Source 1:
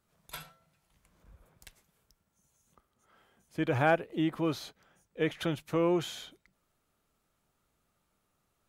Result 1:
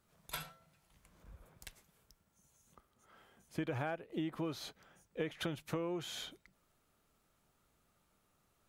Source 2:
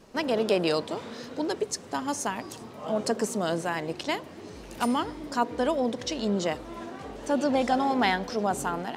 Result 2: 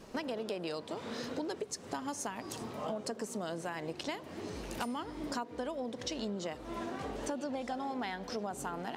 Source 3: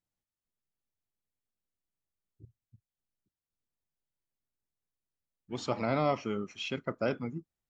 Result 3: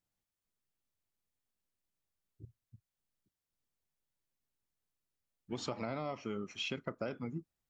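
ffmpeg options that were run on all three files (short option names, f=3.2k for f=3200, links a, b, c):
-af "acompressor=threshold=-36dB:ratio=10,volume=1.5dB"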